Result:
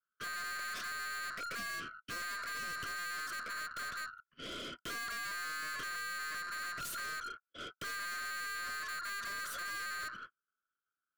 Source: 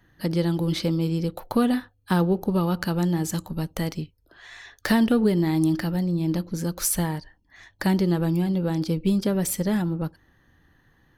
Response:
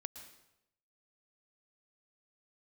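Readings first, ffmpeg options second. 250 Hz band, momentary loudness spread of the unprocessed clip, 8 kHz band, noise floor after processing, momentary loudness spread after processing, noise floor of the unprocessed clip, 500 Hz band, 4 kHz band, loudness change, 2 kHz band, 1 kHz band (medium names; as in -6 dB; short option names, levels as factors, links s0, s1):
-35.5 dB, 9 LU, -12.0 dB, under -85 dBFS, 5 LU, -63 dBFS, -27.0 dB, -5.5 dB, -15.0 dB, 0.0 dB, -8.0 dB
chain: -filter_complex "[0:a]agate=range=0.00398:threshold=0.00355:ratio=16:detection=peak,bass=f=250:g=11,treble=f=4000:g=-13,aeval=exprs='val(0)*sin(2*PI*1400*n/s)':c=same,tiltshelf=f=970:g=10,acrossover=split=130|1500[s0][s1][s2];[s2]aeval=exprs='0.168*sin(PI/2*3.98*val(0)/0.168)':c=same[s3];[s0][s1][s3]amix=inputs=3:normalize=0,acompressor=threshold=0.0794:ratio=6,aeval=exprs='(tanh(126*val(0)+0.15)-tanh(0.15))/126':c=same,asuperstop=centerf=850:order=20:qfactor=3.7,volume=1.26"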